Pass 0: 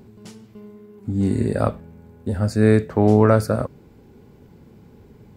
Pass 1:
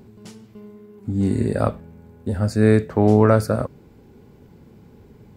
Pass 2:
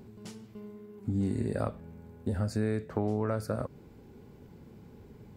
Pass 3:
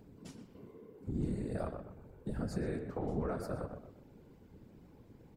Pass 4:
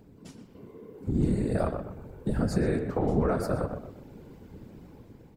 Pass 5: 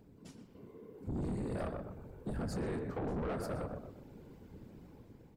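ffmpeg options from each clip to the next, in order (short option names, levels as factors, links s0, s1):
-af anull
-af "acompressor=threshold=0.0708:ratio=5,volume=0.631"
-filter_complex "[0:a]asplit=2[s0][s1];[s1]adelay=123,lowpass=f=1800:p=1,volume=0.501,asplit=2[s2][s3];[s3]adelay=123,lowpass=f=1800:p=1,volume=0.38,asplit=2[s4][s5];[s5]adelay=123,lowpass=f=1800:p=1,volume=0.38,asplit=2[s6][s7];[s7]adelay=123,lowpass=f=1800:p=1,volume=0.38,asplit=2[s8][s9];[s9]adelay=123,lowpass=f=1800:p=1,volume=0.38[s10];[s0][s2][s4][s6][s8][s10]amix=inputs=6:normalize=0,afftfilt=real='hypot(re,im)*cos(2*PI*random(0))':imag='hypot(re,im)*sin(2*PI*random(1))':win_size=512:overlap=0.75,volume=0.891"
-af "dynaudnorm=f=330:g=5:m=2.37,volume=1.41"
-af "asoftclip=type=tanh:threshold=0.0447,volume=0.501"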